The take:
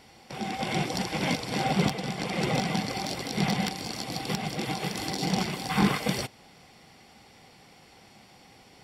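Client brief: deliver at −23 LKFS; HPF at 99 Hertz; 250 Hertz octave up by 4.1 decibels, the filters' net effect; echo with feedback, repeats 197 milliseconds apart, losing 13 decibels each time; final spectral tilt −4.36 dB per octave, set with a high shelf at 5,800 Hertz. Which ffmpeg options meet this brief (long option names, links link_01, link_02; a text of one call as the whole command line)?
ffmpeg -i in.wav -af "highpass=99,equalizer=frequency=250:width_type=o:gain=6,highshelf=frequency=5800:gain=8,aecho=1:1:197|394|591:0.224|0.0493|0.0108,volume=3.5dB" out.wav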